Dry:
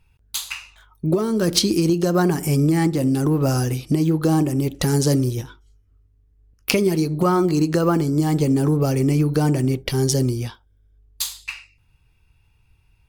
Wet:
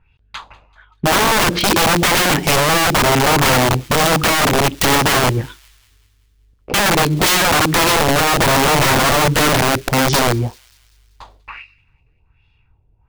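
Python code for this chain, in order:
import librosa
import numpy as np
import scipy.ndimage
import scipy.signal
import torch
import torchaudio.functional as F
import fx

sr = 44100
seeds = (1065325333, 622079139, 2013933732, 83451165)

y = fx.leveller(x, sr, passes=1)
y = fx.filter_lfo_lowpass(y, sr, shape='sine', hz=1.3, low_hz=530.0, high_hz=3700.0, q=2.2)
y = (np.mod(10.0 ** (12.5 / 20.0) * y + 1.0, 2.0) - 1.0) / 10.0 ** (12.5 / 20.0)
y = fx.echo_wet_highpass(y, sr, ms=193, feedback_pct=49, hz=2500.0, wet_db=-22.5)
y = y * librosa.db_to_amplitude(3.5)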